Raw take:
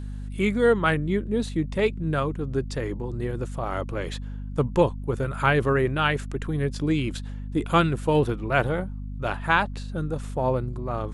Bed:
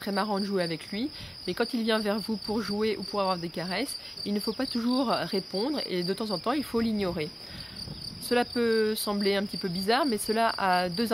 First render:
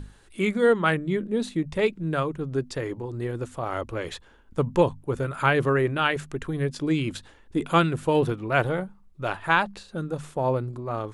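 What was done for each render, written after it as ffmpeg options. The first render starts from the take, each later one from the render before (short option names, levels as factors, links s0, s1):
-af "bandreject=f=50:t=h:w=6,bandreject=f=100:t=h:w=6,bandreject=f=150:t=h:w=6,bandreject=f=200:t=h:w=6,bandreject=f=250:t=h:w=6"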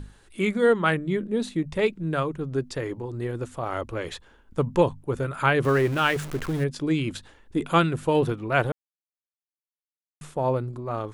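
-filter_complex "[0:a]asettb=1/sr,asplit=3[s0][s1][s2];[s0]atrim=end=5.644[s3];[s1]atrim=start=5.64:end=6.64,asetpts=PTS-STARTPTS,afade=t=in:d=0.004:c=qsin,afade=t=out:st=0.996:d=0.004:c=qsin,aeval=exprs='val(0)+0.5*0.0251*sgn(val(0))':c=same[s4];[s2]atrim=start=6.636[s5];[s3][s4]acrossfade=d=0.004:c1=hsin:c2=qsin[s6];[s6][s5]acrossfade=d=0.004:c1=qsin:c2=hsin,asplit=3[s7][s8][s9];[s7]atrim=end=8.72,asetpts=PTS-STARTPTS,afade=t=out:st=8.716:d=0.004:c=hsin[s10];[s8]atrim=start=8.72:end=10.21,asetpts=PTS-STARTPTS,volume=0[s11];[s9]atrim=start=10.21,asetpts=PTS-STARTPTS,afade=t=in:d=0.004:c=hsin[s12];[s10][s11][s12]concat=n=3:v=0:a=1"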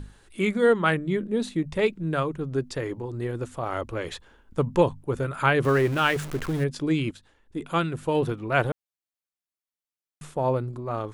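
-filter_complex "[0:a]asplit=2[s0][s1];[s0]atrim=end=7.11,asetpts=PTS-STARTPTS,afade=t=out:st=7.106:d=0.004:c=hsin:silence=0.237137[s2];[s1]atrim=start=7.11,asetpts=PTS-STARTPTS,afade=t=in:d=1.53:silence=0.237137[s3];[s2][s3]concat=n=2:v=0:a=1"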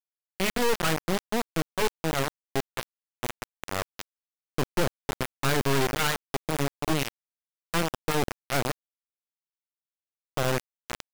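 -af "aeval=exprs='(tanh(8.91*val(0)+0.4)-tanh(0.4))/8.91':c=same,acrusher=bits=3:mix=0:aa=0.000001"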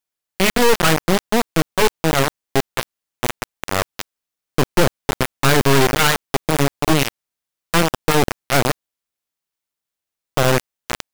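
-af "volume=3.35"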